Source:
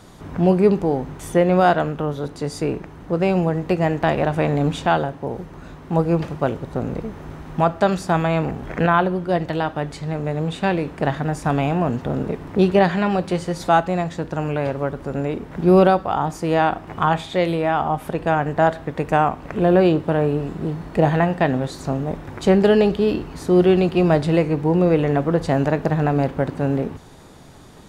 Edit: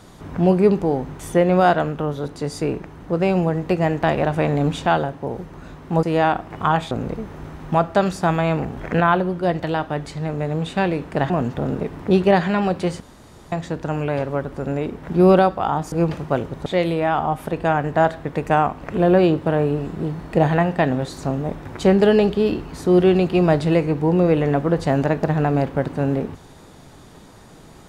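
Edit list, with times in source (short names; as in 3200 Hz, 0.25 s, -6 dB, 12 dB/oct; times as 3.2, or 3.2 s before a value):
6.03–6.77 swap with 16.4–17.28
11.16–11.78 cut
13.48–14 room tone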